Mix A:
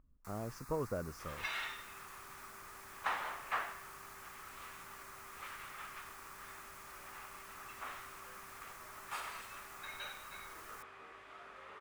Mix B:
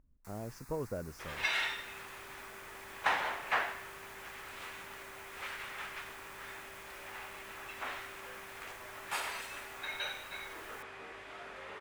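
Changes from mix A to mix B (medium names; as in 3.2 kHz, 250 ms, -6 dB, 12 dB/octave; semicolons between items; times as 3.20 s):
second sound +8.5 dB; master: add peaking EQ 1.2 kHz -8.5 dB 0.36 oct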